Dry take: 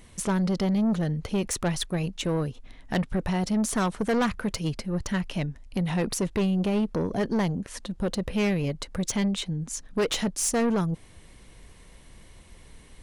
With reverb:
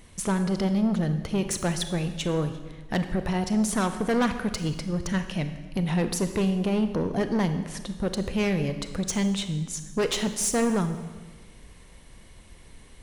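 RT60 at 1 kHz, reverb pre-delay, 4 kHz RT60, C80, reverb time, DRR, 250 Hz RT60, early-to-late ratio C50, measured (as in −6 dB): 1.3 s, 28 ms, 1.2 s, 11.0 dB, 1.3 s, 8.5 dB, 1.4 s, 9.5 dB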